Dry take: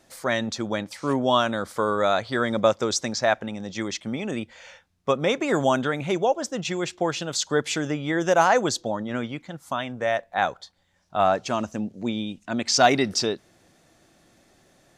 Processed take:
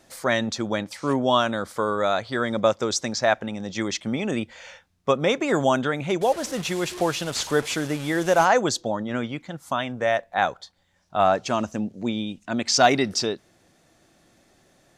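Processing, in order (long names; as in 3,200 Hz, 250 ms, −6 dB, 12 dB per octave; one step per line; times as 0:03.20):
0:06.21–0:08.45: linear delta modulator 64 kbit/s, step −31 dBFS
speech leveller within 4 dB 2 s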